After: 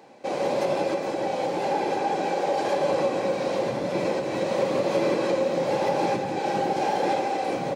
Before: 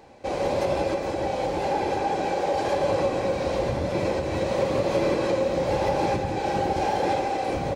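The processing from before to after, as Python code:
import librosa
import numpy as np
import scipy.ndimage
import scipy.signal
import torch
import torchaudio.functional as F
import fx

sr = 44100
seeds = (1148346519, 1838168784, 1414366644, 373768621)

y = scipy.signal.sosfilt(scipy.signal.butter(4, 150.0, 'highpass', fs=sr, output='sos'), x)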